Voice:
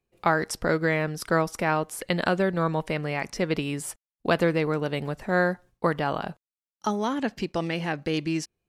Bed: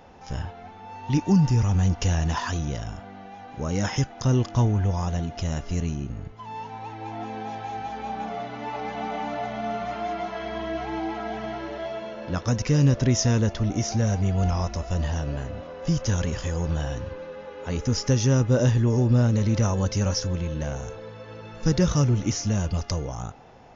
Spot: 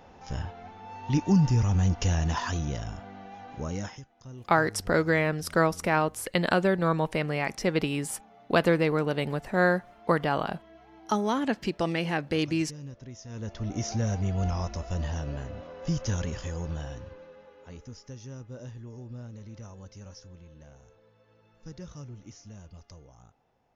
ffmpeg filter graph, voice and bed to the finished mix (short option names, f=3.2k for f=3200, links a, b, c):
-filter_complex "[0:a]adelay=4250,volume=0dB[a];[1:a]volume=15.5dB,afade=t=out:st=3.52:d=0.49:silence=0.0944061,afade=t=in:st=13.28:d=0.57:silence=0.125893,afade=t=out:st=16.13:d=1.85:silence=0.141254[b];[a][b]amix=inputs=2:normalize=0"